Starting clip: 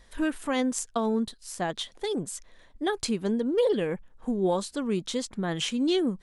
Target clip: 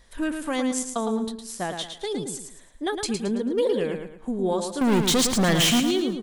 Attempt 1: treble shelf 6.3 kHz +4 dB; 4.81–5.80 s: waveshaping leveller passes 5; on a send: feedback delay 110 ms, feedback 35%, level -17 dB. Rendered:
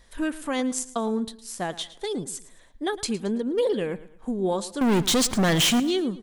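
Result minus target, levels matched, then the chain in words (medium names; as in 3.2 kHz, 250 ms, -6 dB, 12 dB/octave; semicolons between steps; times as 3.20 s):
echo-to-direct -10.5 dB
treble shelf 6.3 kHz +4 dB; 4.81–5.80 s: waveshaping leveller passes 5; on a send: feedback delay 110 ms, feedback 35%, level -6.5 dB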